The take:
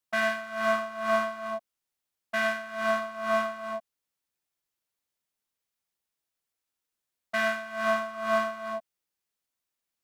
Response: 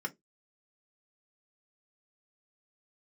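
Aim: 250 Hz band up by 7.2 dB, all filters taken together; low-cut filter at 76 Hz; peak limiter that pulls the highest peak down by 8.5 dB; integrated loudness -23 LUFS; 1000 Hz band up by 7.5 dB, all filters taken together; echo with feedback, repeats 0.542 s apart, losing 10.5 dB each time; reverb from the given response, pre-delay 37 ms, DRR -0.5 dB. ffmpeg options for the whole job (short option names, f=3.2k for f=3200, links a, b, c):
-filter_complex "[0:a]highpass=76,equalizer=f=250:t=o:g=8,equalizer=f=1k:t=o:g=8.5,alimiter=limit=-16dB:level=0:latency=1,aecho=1:1:542|1084|1626:0.299|0.0896|0.0269,asplit=2[a][b];[1:a]atrim=start_sample=2205,adelay=37[c];[b][c]afir=irnorm=-1:irlink=0,volume=-2dB[d];[a][d]amix=inputs=2:normalize=0,volume=-1.5dB"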